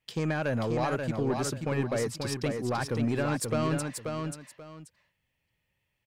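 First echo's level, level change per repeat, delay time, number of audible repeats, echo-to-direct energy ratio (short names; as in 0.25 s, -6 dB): -5.0 dB, -12.5 dB, 0.534 s, 2, -5.0 dB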